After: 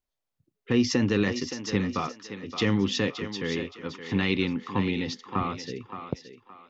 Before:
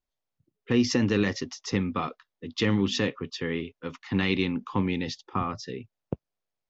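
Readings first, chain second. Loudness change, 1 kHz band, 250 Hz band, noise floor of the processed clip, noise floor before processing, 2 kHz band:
0.0 dB, +0.5 dB, 0.0 dB, -85 dBFS, under -85 dBFS, +0.5 dB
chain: thinning echo 570 ms, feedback 33%, high-pass 320 Hz, level -9 dB

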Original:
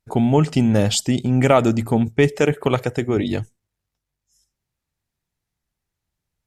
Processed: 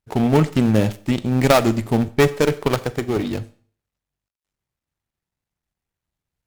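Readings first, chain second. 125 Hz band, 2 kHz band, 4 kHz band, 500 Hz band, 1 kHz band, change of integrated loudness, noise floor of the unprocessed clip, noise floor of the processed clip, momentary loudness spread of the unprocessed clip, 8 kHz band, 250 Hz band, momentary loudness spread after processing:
-1.0 dB, +0.5 dB, -1.5 dB, 0.0 dB, +0.5 dB, -0.5 dB, -83 dBFS, under -85 dBFS, 6 LU, -4.5 dB, -0.5 dB, 8 LU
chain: dead-time distortion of 0.17 ms; Chebyshev shaper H 4 -17 dB, 7 -26 dB, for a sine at -3 dBFS; Schroeder reverb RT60 0.46 s, combs from 29 ms, DRR 15.5 dB; trim +1 dB

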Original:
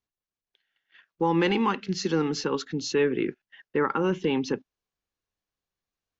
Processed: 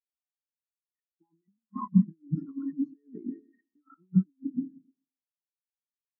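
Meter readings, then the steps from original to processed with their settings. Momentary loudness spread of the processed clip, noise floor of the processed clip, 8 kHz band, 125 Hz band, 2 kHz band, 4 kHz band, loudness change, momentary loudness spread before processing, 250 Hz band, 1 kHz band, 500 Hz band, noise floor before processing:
16 LU, under -85 dBFS, no reading, +2.0 dB, under -40 dB, under -40 dB, -4.0 dB, 8 LU, -2.0 dB, -15.5 dB, -29.5 dB, under -85 dBFS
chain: ten-band graphic EQ 125 Hz +5 dB, 250 Hz +11 dB, 500 Hz -10 dB, 1 kHz +8 dB, 2 kHz +10 dB, 4 kHz -11 dB; Schroeder reverb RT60 1.9 s, combs from 29 ms, DRR 9 dB; compressor with a negative ratio -26 dBFS, ratio -0.5; spectral contrast expander 4:1

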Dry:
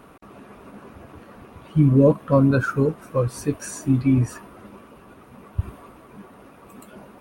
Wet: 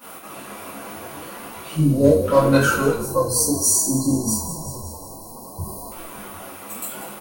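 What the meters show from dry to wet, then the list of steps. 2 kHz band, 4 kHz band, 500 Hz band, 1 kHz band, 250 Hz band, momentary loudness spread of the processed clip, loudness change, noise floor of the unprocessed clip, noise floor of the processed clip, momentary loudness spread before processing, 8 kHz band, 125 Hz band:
+6.5 dB, +15.0 dB, +3.5 dB, +6.5 dB, -0.5 dB, 20 LU, +2.0 dB, -48 dBFS, -39 dBFS, 15 LU, +19.0 dB, -3.0 dB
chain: partial rectifier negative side -3 dB; time-frequency box 1.73–2.23 s, 740–3700 Hz -17 dB; RIAA curve recording; frequency-shifting echo 187 ms, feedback 63%, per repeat -46 Hz, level -13.5 dB; spectral selection erased 2.94–5.92 s, 1.1–4 kHz; in parallel at -2 dB: compression, threshold -35 dBFS, peak gain reduction 17.5 dB; on the sum: hard clipper -11.5 dBFS, distortion -34 dB; flange 0.69 Hz, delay 3.9 ms, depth 7.4 ms, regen +51%; gate -51 dBFS, range -9 dB; two-slope reverb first 0.45 s, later 1.9 s, from -26 dB, DRR -7 dB; trim +2.5 dB

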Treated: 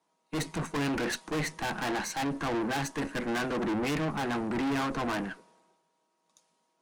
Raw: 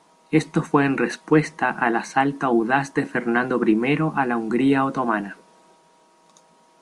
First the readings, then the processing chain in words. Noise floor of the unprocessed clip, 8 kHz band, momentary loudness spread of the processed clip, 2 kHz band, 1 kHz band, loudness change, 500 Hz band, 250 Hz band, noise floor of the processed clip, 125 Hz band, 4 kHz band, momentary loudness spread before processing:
-57 dBFS, +1.0 dB, 5 LU, -10.0 dB, -11.0 dB, -10.5 dB, -11.0 dB, -11.0 dB, -76 dBFS, -9.0 dB, -0.5 dB, 5 LU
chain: valve stage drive 31 dB, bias 0.6; three bands expanded up and down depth 70%; trim +2.5 dB

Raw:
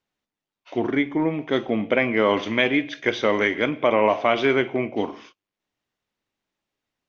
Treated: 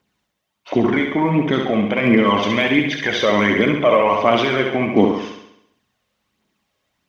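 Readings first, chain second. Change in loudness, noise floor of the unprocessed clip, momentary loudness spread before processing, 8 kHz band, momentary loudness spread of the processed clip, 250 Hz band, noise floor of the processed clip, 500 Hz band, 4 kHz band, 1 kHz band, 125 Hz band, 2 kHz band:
+5.0 dB, under -85 dBFS, 7 LU, no reading, 4 LU, +7.0 dB, -75 dBFS, +4.0 dB, +6.5 dB, +6.0 dB, +9.5 dB, +4.0 dB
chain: high-pass 46 Hz; in parallel at -2 dB: compression, threshold -28 dBFS, peak gain reduction 13.5 dB; on the sum: peak limiter -12.5 dBFS, peak gain reduction 7 dB; small resonant body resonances 200/1100/3100 Hz, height 7 dB, ringing for 90 ms; phaser 1.4 Hz, delay 2 ms, feedback 52%; on a send: flutter echo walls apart 11.6 m, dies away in 0.76 s; on the sum: trim +4 dB

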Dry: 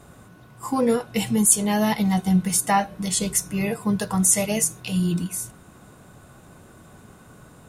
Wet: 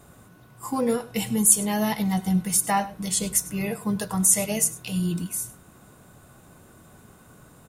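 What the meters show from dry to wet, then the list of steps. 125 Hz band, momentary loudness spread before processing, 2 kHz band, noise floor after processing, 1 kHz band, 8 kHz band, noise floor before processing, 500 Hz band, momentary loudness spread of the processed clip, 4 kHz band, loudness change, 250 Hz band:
-3.5 dB, 9 LU, -3.5 dB, -53 dBFS, -3.5 dB, 0.0 dB, -49 dBFS, -3.5 dB, 11 LU, -2.5 dB, -1.5 dB, -3.5 dB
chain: treble shelf 12 kHz +11 dB; on a send: delay 100 ms -18.5 dB; on the sum: trim -3.5 dB

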